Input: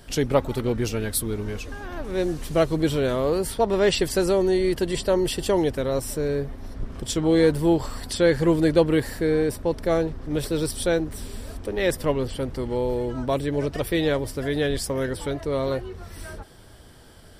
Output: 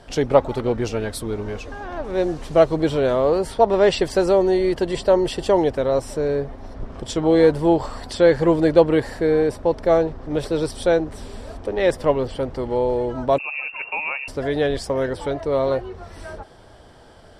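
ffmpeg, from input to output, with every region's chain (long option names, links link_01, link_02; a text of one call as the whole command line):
ffmpeg -i in.wav -filter_complex "[0:a]asettb=1/sr,asplit=3[link_01][link_02][link_03];[link_01]atrim=end=13.384[link_04];[link_02]atrim=start=13.38:end=14.28,asetpts=PTS-STARTPTS,afade=type=in:duration=0.004:curve=qsin,afade=type=out:start_time=0.896:duration=0.004:curve=qsin,equalizer=frequency=610:width=0.43:gain=-7.5,lowpass=frequency=2400:width_type=q:width=0.5098,lowpass=frequency=2400:width_type=q:width=0.6013,lowpass=frequency=2400:width_type=q:width=0.9,lowpass=frequency=2400:width_type=q:width=2.563,afreqshift=-2800[link_05];[link_03]atrim=start=14.276[link_06];[link_04][link_05]acrossfade=duration=0.004:curve1=hsin:curve2=qsin[link_07];[link_07][link_06]acrossfade=duration=0.004:curve1=qsin:curve2=hsin,lowpass=7100,equalizer=frequency=720:width_type=o:width=1.6:gain=9,volume=-1dB" out.wav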